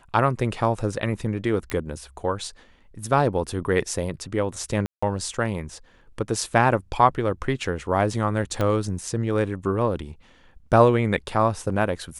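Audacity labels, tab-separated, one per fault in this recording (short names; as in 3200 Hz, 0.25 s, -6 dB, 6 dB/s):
1.700000	1.700000	pop -13 dBFS
4.860000	5.030000	gap 0.165 s
8.610000	8.610000	pop -12 dBFS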